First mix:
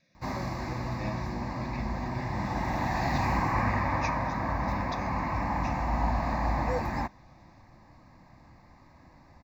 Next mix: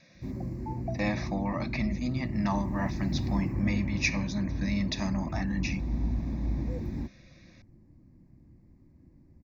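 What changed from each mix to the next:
speech +11.0 dB; background: add FFT filter 360 Hz 0 dB, 780 Hz -24 dB, 1.2 kHz -25 dB, 2.3 kHz -19 dB, 3.7 kHz -24 dB, 10 kHz -10 dB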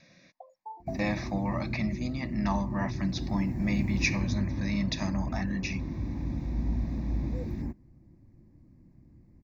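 background: entry +0.65 s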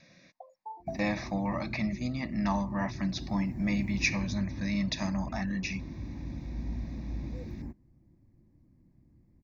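background -6.0 dB

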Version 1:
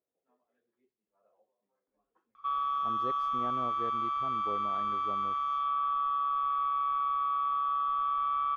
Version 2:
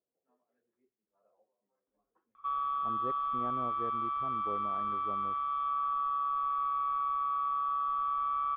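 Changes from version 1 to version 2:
background: remove distance through air 110 m; master: add distance through air 450 m

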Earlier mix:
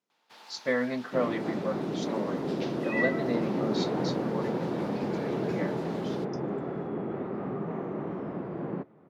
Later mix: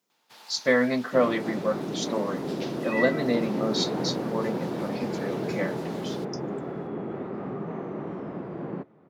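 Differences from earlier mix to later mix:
speech +6.0 dB; master: add treble shelf 6.5 kHz +11.5 dB

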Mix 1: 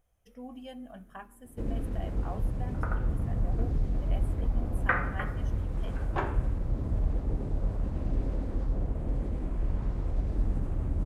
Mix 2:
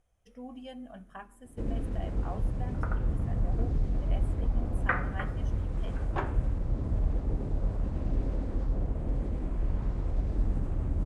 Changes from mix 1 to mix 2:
second sound: send -6.5 dB; master: add low-pass 10 kHz 24 dB/octave

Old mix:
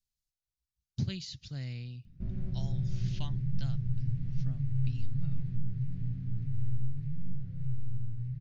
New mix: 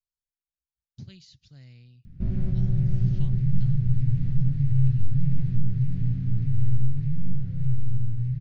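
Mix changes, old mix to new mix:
speech -10.0 dB; background +9.5 dB

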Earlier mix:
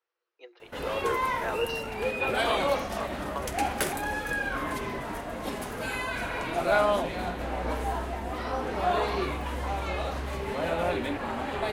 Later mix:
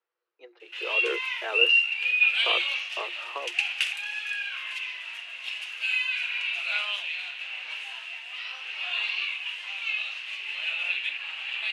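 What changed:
background: add resonant high-pass 2.7 kHz, resonance Q 9.3; master: add distance through air 75 m

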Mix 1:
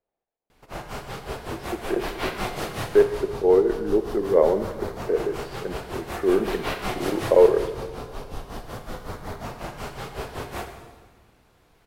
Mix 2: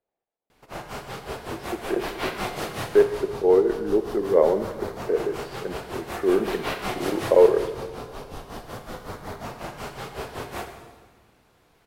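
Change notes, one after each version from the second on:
master: add bass shelf 75 Hz -8 dB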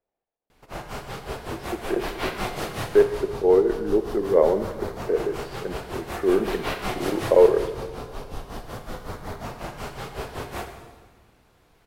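master: add bass shelf 75 Hz +8 dB

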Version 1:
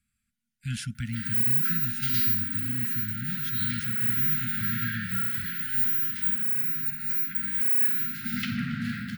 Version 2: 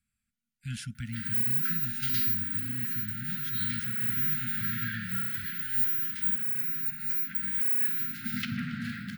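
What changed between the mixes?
speech -4.5 dB; background: send -7.0 dB

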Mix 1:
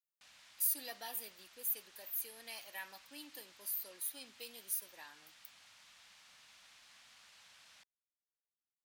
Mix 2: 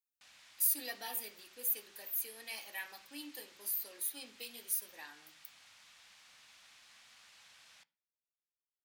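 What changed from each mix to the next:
reverb: on, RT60 0.50 s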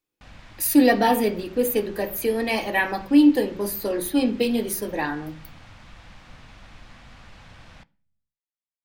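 speech +8.5 dB; master: remove differentiator

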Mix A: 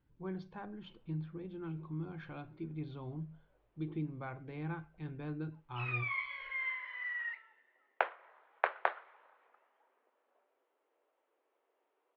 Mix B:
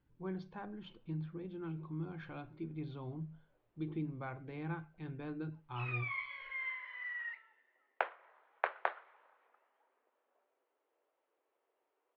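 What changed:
speech: add hum notches 50/100/150 Hz; background -3.0 dB

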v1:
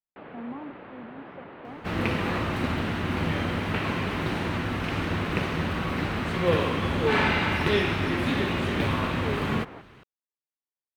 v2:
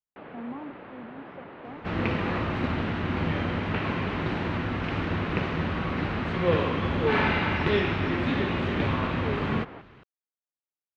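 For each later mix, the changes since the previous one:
second sound: add distance through air 160 m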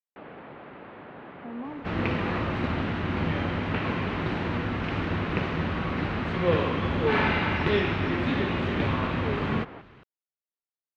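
speech: entry +1.10 s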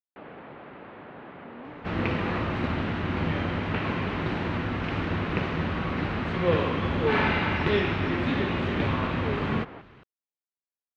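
speech -9.5 dB

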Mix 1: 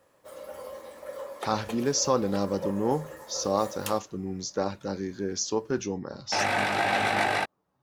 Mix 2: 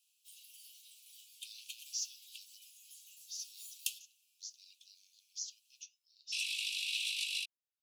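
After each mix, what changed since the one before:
speech -11.0 dB; master: add steep high-pass 2.6 kHz 96 dB/octave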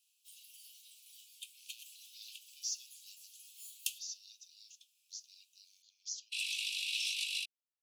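speech: entry +0.70 s

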